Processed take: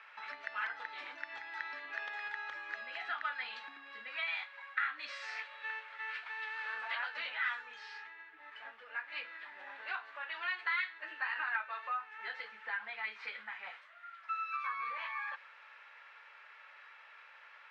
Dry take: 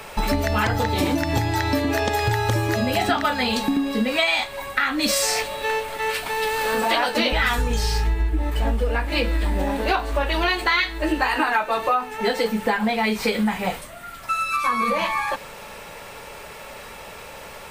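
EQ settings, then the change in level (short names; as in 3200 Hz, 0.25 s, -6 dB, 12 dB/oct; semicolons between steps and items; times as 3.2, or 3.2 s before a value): ladder band-pass 1900 Hz, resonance 40%; air absorption 140 m; -3.0 dB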